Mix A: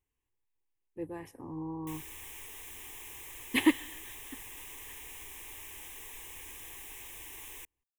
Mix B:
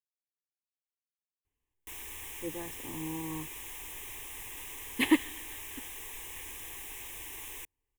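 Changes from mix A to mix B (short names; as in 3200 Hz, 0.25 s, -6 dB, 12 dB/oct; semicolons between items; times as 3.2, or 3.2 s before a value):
speech: entry +1.45 s; background +3.0 dB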